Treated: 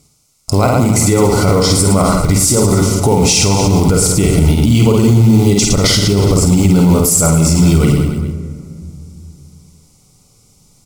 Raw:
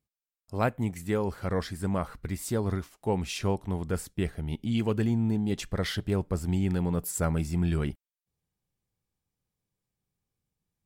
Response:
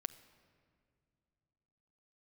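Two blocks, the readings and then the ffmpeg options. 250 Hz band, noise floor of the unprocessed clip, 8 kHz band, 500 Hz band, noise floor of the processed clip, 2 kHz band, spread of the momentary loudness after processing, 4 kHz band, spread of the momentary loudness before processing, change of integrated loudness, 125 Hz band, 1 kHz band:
+18.0 dB, below −85 dBFS, +27.5 dB, +18.0 dB, −52 dBFS, +15.5 dB, 5 LU, +23.0 dB, 6 LU, +19.0 dB, +19.5 dB, +18.0 dB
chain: -filter_complex "[0:a]lowpass=9200,highshelf=frequency=4300:width_type=q:width=1.5:gain=8.5,acompressor=threshold=-35dB:ratio=4,acrusher=bits=6:mode=log:mix=0:aa=0.000001,asuperstop=centerf=1700:order=8:qfactor=3.9,aecho=1:1:50|112.5|190.6|288.3|410.4:0.631|0.398|0.251|0.158|0.1[link_01];[1:a]atrim=start_sample=2205,asetrate=40572,aresample=44100[link_02];[link_01][link_02]afir=irnorm=-1:irlink=0,alimiter=level_in=33.5dB:limit=-1dB:release=50:level=0:latency=1,volume=-1dB"

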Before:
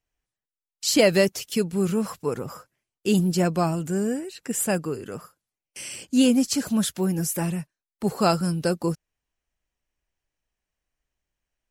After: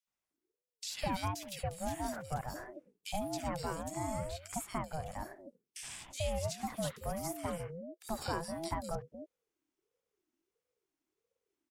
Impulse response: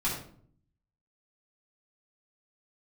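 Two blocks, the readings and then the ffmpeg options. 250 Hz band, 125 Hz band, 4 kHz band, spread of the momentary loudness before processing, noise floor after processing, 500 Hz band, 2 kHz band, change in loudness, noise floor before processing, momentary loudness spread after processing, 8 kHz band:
−19.5 dB, −13.5 dB, −14.5 dB, 15 LU, below −85 dBFS, −15.0 dB, −13.5 dB, −15.5 dB, below −85 dBFS, 10 LU, −14.0 dB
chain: -filter_complex "[0:a]acrossover=split=100|1100|2500[link_01][link_02][link_03][link_04];[link_01]acompressor=threshold=-51dB:ratio=4[link_05];[link_02]acompressor=threshold=-30dB:ratio=4[link_06];[link_03]acompressor=threshold=-41dB:ratio=4[link_07];[link_04]acompressor=threshold=-40dB:ratio=4[link_08];[link_05][link_06][link_07][link_08]amix=inputs=4:normalize=0,acrossover=split=160|2200[link_09][link_10][link_11];[link_10]adelay=70[link_12];[link_09]adelay=300[link_13];[link_13][link_12][link_11]amix=inputs=3:normalize=0,aeval=exprs='val(0)*sin(2*PI*400*n/s+400*0.25/1.5*sin(2*PI*1.5*n/s))':channel_layout=same,volume=-2dB"

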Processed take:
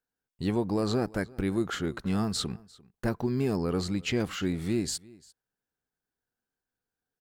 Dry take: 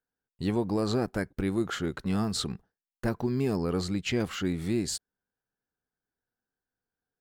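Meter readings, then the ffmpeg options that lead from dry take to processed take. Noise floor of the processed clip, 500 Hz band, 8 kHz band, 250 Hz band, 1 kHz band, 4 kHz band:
below −85 dBFS, 0.0 dB, 0.0 dB, 0.0 dB, 0.0 dB, 0.0 dB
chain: -af "aecho=1:1:347:0.0668"

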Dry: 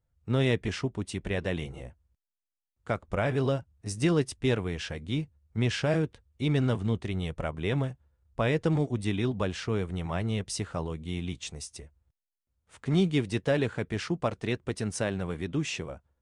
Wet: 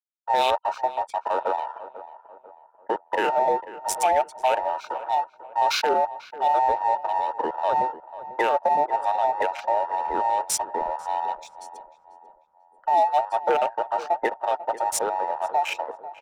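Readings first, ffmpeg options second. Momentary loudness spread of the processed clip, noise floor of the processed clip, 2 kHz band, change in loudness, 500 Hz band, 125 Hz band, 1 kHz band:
10 LU, −58 dBFS, +3.0 dB, +5.5 dB, +5.0 dB, below −25 dB, +20.5 dB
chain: -filter_complex "[0:a]afftfilt=real='real(if(between(b,1,1008),(2*floor((b-1)/48)+1)*48-b,b),0)':imag='imag(if(between(b,1,1008),(2*floor((b-1)/48)+1)*48-b,b),0)*if(between(b,1,1008),-1,1)':win_size=2048:overlap=0.75,aemphasis=mode=production:type=75fm,acrossover=split=250[link_01][link_02];[link_01]aeval=exprs='(mod(100*val(0)+1,2)-1)/100':channel_layout=same[link_03];[link_03][link_02]amix=inputs=2:normalize=0,afftfilt=real='re*gte(hypot(re,im),0.0158)':imag='im*gte(hypot(re,im),0.0158)':win_size=1024:overlap=0.75,afwtdn=0.0224,asplit=2[link_04][link_05];[link_05]alimiter=limit=-20.5dB:level=0:latency=1:release=264,volume=2dB[link_06];[link_04][link_06]amix=inputs=2:normalize=0,adynamicsmooth=sensitivity=7:basefreq=3200,asplit=2[link_07][link_08];[link_08]adelay=493,lowpass=frequency=1600:poles=1,volume=-14.5dB,asplit=2[link_09][link_10];[link_10]adelay=493,lowpass=frequency=1600:poles=1,volume=0.46,asplit=2[link_11][link_12];[link_12]adelay=493,lowpass=frequency=1600:poles=1,volume=0.46,asplit=2[link_13][link_14];[link_14]adelay=493,lowpass=frequency=1600:poles=1,volume=0.46[link_15];[link_07][link_09][link_11][link_13][link_15]amix=inputs=5:normalize=0"

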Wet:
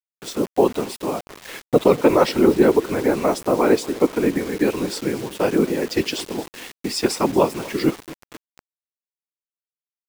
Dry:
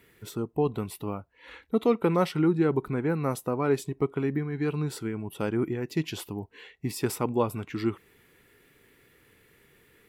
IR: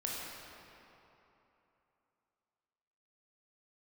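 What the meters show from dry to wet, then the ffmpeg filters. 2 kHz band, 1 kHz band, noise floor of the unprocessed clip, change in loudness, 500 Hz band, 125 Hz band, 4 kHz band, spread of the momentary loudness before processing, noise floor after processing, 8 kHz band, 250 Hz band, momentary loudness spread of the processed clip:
+9.5 dB, +9.5 dB, −62 dBFS, +9.0 dB, +10.0 dB, −0.5 dB, +13.0 dB, 13 LU, below −85 dBFS, +10.0 dB, +7.5 dB, 14 LU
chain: -filter_complex "[0:a]highpass=frequency=240:width=0.5412,highpass=frequency=240:width=1.3066,equalizer=frequency=660:width_type=q:width=4:gain=4,equalizer=frequency=1300:width_type=q:width=4:gain=-4,equalizer=frequency=5100:width_type=q:width=4:gain=6,lowpass=frequency=8900:width=0.5412,lowpass=frequency=8900:width=1.3066,apsyclip=16dB,afftfilt=real='hypot(re,im)*cos(2*PI*random(0))':imag='hypot(re,im)*sin(2*PI*random(1))':win_size=512:overlap=0.75,asplit=2[link_01][link_02];[link_02]aecho=0:1:237|474|711|948:0.1|0.055|0.0303|0.0166[link_03];[link_01][link_03]amix=inputs=2:normalize=0,acrusher=bits=5:mix=0:aa=0.000001"

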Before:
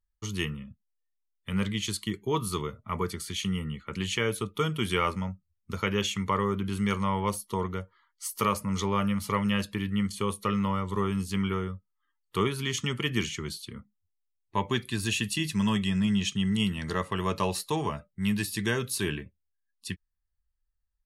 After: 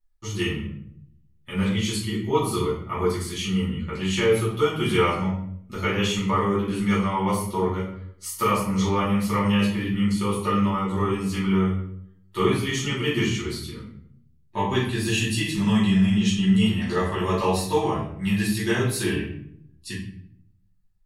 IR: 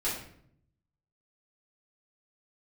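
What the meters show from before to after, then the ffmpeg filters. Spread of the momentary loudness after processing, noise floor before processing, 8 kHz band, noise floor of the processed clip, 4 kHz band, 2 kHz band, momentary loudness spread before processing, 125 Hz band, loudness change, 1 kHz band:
13 LU, −79 dBFS, +2.5 dB, −58 dBFS, +3.5 dB, +4.5 dB, 11 LU, +6.0 dB, +6.0 dB, +5.0 dB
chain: -filter_complex "[0:a]equalizer=frequency=760:width=7.5:gain=7[link_01];[1:a]atrim=start_sample=2205,asetrate=43659,aresample=44100[link_02];[link_01][link_02]afir=irnorm=-1:irlink=0,volume=-2dB"

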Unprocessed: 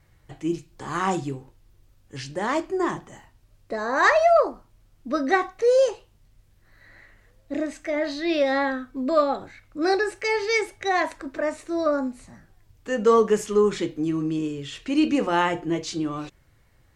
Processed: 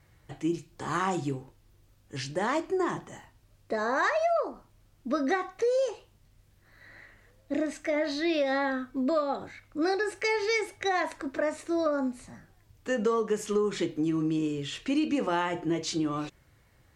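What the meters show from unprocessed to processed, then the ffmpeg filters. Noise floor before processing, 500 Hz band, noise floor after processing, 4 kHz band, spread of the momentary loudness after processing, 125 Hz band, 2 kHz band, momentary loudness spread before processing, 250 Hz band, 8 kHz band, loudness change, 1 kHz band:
−60 dBFS, −6.5 dB, −63 dBFS, −3.5 dB, 9 LU, −2.5 dB, −5.5 dB, 14 LU, −3.5 dB, −3.0 dB, −5.5 dB, −6.5 dB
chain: -af "highpass=frequency=56:poles=1,acompressor=threshold=-24dB:ratio=6"

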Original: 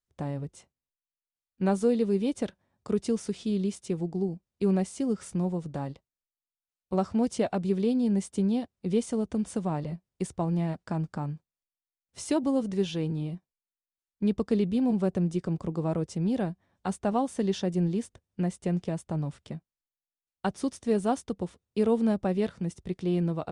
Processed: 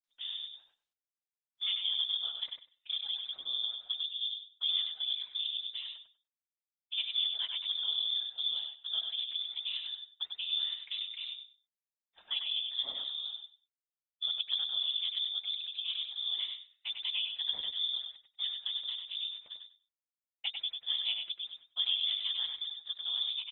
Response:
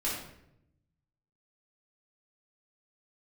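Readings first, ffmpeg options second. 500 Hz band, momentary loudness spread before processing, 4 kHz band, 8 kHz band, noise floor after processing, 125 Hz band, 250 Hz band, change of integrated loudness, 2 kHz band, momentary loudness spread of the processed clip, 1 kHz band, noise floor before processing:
below −35 dB, 10 LU, +19.0 dB, below −35 dB, below −85 dBFS, below −40 dB, below −40 dB, −4.0 dB, −2.5 dB, 9 LU, below −20 dB, below −85 dBFS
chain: -filter_complex "[0:a]adynamicequalizer=threshold=0.00708:dfrequency=740:dqfactor=1.6:tfrequency=740:tqfactor=1.6:attack=5:release=100:ratio=0.375:range=2:mode=cutabove:tftype=bell,afftfilt=real='hypot(re,im)*cos(2*PI*random(0))':imag='hypot(re,im)*sin(2*PI*random(1))':win_size=512:overlap=0.75,lowpass=frequency=3100:width_type=q:width=0.5098,lowpass=frequency=3100:width_type=q:width=0.6013,lowpass=frequency=3100:width_type=q:width=0.9,lowpass=frequency=3100:width_type=q:width=2.563,afreqshift=-3700,asplit=2[link_01][link_02];[link_02]aecho=0:1:97|194|291:0.531|0.0956|0.0172[link_03];[link_01][link_03]amix=inputs=2:normalize=0,volume=-2.5dB" -ar 48000 -c:a libopus -b:a 20k

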